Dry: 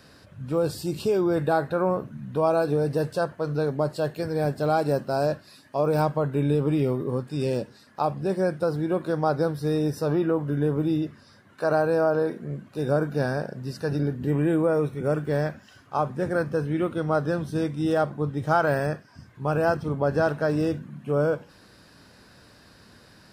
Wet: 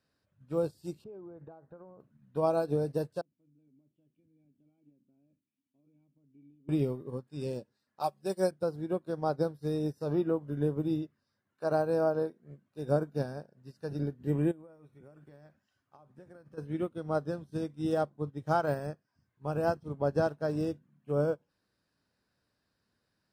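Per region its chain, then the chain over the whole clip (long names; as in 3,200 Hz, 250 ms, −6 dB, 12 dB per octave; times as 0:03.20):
0:01.04–0:02.00: low-pass filter 1,200 Hz + downward compressor 5 to 1, threshold −28 dBFS
0:03.21–0:06.69: notch filter 450 Hz, Q 9.5 + downward compressor 3 to 1, threshold −28 dBFS + formant resonators in series i
0:08.00–0:08.51: spectral tilt +3 dB per octave + comb filter 5.3 ms, depth 69%
0:14.51–0:16.58: downward compressor 10 to 1, threshold −28 dBFS + notch filter 450 Hz
whole clip: dynamic equaliser 1,800 Hz, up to −7 dB, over −41 dBFS, Q 0.84; expander for the loud parts 2.5 to 1, over −37 dBFS; level −2 dB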